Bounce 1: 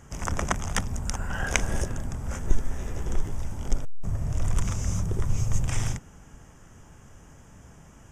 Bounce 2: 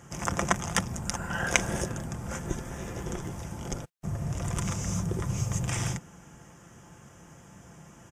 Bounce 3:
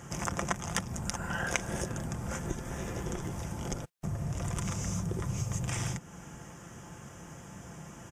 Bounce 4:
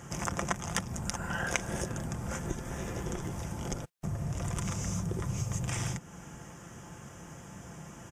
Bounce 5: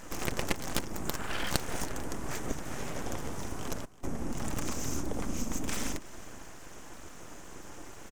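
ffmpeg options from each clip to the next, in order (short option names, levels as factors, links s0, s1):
-af "highpass=89,aecho=1:1:5.8:0.36,volume=1.12"
-af "acompressor=threshold=0.01:ratio=2,volume=1.58"
-af anull
-af "aeval=exprs='abs(val(0))':c=same,aecho=1:1:327:0.1,volume=1.33"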